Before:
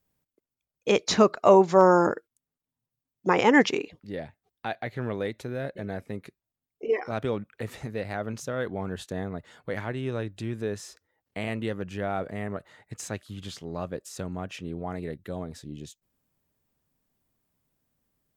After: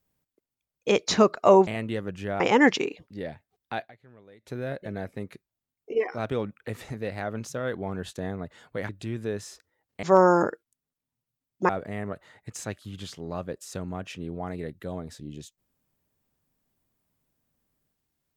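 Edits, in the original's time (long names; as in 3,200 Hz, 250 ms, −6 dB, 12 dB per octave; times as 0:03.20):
0:01.67–0:03.33: swap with 0:11.40–0:12.13
0:04.77–0:05.43: duck −22 dB, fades 0.31 s exponential
0:09.82–0:10.26: remove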